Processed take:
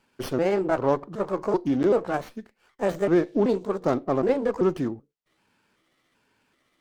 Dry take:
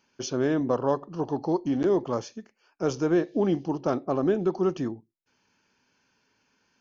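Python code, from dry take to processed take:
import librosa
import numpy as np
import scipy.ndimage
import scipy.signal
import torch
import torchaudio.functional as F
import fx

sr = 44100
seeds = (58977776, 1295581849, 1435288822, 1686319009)

y = fx.pitch_trill(x, sr, semitones=4.5, every_ms=384)
y = fx.running_max(y, sr, window=5)
y = F.gain(torch.from_numpy(y), 2.5).numpy()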